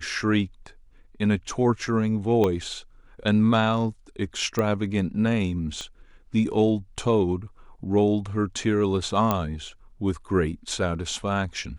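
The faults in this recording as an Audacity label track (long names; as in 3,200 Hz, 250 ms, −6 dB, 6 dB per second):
2.440000	2.440000	click −12 dBFS
4.590000	4.590000	click −13 dBFS
5.810000	5.810000	click −21 dBFS
9.310000	9.310000	click −9 dBFS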